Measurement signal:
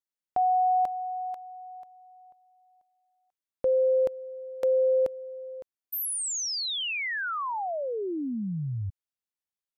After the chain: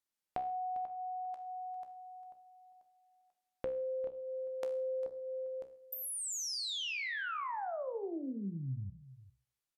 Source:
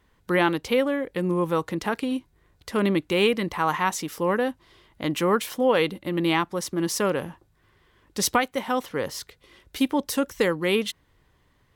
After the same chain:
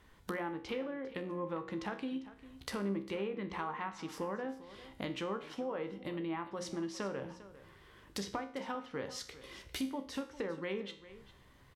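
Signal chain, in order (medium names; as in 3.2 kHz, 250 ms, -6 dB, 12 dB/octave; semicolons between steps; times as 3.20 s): hum notches 60/120/180/240/300/360/420/480/540 Hz; low-pass that closes with the level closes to 1.5 kHz, closed at -18.5 dBFS; compression 4:1, threshold -42 dBFS; feedback comb 66 Hz, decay 0.48 s, harmonics all, mix 70%; delay 400 ms -16.5 dB; trim +9 dB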